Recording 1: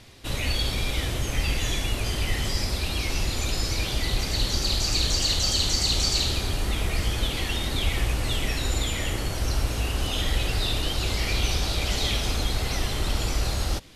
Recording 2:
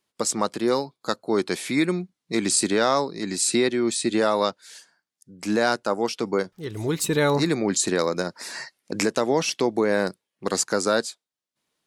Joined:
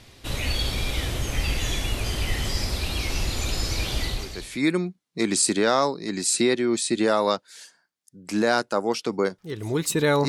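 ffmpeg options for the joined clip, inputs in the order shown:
-filter_complex "[0:a]apad=whole_dur=10.28,atrim=end=10.28,atrim=end=4.68,asetpts=PTS-STARTPTS[a];[1:a]atrim=start=1.16:end=7.42,asetpts=PTS-STARTPTS[b];[a][b]acrossfade=d=0.66:c1=qua:c2=qua"

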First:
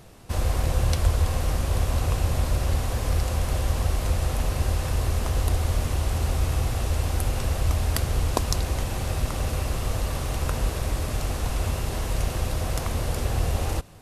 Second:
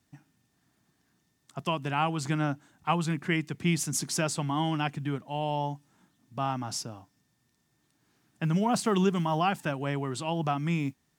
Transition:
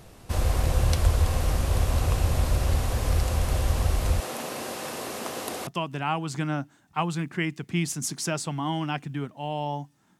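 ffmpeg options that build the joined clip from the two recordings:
-filter_complex "[0:a]asettb=1/sr,asplit=3[a][b][c];[a]atrim=end=4.204[d];[b]atrim=start=4.2:end=5.67,asetpts=PTS-STARTPTS,afade=t=in:d=0.004:c=qsin,afade=t=out:st=1.466:d=0.004:c=qsin,highpass=f=210:w=0.5412,highpass=f=210:w=1.3066[e];[c]atrim=start=5.666[f];[d][e]acrossfade=d=0.004:c1=hsin:c2=qsin[g];[g][f]acrossfade=d=0.004:c1=qsin:c2=hsin,apad=whole_dur=10.19,atrim=end=10.19,atrim=end=5.672[h];[1:a]atrim=start=1.578:end=6.1[i];[h][i]acrossfade=d=0.004:c1=hsin:c2=hsin"

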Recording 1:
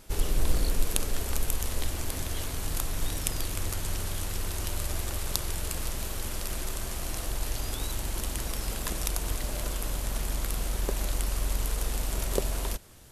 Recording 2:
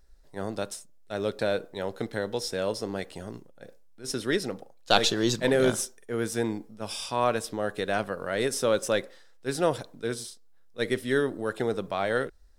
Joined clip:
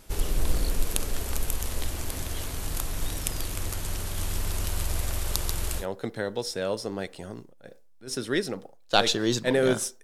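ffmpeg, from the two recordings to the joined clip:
-filter_complex "[0:a]asplit=3[a][b][c];[a]afade=t=out:st=4.16:d=0.02[d];[b]aecho=1:1:138:0.596,afade=t=in:st=4.16:d=0.02,afade=t=out:st=5.86:d=0.02[e];[c]afade=t=in:st=5.86:d=0.02[f];[d][e][f]amix=inputs=3:normalize=0,apad=whole_dur=10.03,atrim=end=10.03,atrim=end=5.86,asetpts=PTS-STARTPTS[g];[1:a]atrim=start=1.73:end=6,asetpts=PTS-STARTPTS[h];[g][h]acrossfade=d=0.1:c1=tri:c2=tri"

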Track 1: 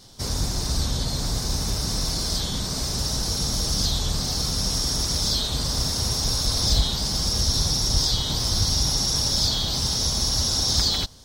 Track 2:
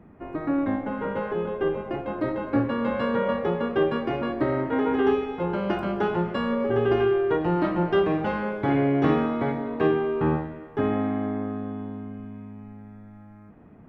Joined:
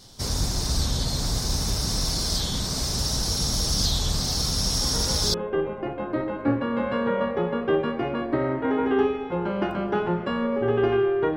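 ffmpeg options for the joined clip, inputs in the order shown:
-filter_complex "[1:a]asplit=2[a][b];[0:a]apad=whole_dur=11.36,atrim=end=11.36,atrim=end=5.342[c];[b]atrim=start=1.418:end=7.44[d];[a]atrim=start=0.89:end=1.42,asetpts=PTS-STARTPTS,volume=-6.5dB,afade=t=in:d=0.004:c=hsin,afade=t=out:st=0.526:d=0.004:c=hsin,adelay=212121S[e];[c][d]acrossfade=d=0.004:c1=hsin:c2=hsin[f];[f][e]amix=inputs=2:normalize=0"

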